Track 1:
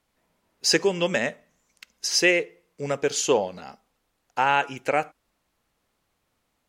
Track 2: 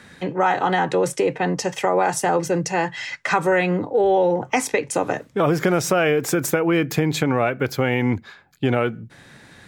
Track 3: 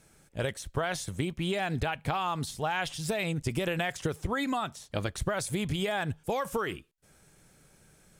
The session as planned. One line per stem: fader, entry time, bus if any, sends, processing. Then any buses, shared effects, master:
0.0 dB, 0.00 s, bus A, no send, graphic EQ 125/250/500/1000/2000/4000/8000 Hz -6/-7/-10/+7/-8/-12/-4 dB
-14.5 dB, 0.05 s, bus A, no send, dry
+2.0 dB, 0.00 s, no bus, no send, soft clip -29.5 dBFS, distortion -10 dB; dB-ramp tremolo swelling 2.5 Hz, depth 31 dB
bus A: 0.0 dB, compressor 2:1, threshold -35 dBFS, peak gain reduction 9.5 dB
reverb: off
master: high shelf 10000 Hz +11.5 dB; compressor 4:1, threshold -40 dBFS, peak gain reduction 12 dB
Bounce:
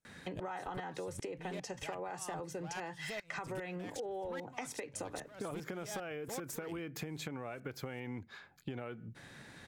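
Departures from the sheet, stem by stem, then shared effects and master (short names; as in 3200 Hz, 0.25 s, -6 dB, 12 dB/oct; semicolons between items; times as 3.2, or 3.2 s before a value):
stem 1: muted; stem 2 -14.5 dB -> -7.0 dB; master: missing high shelf 10000 Hz +11.5 dB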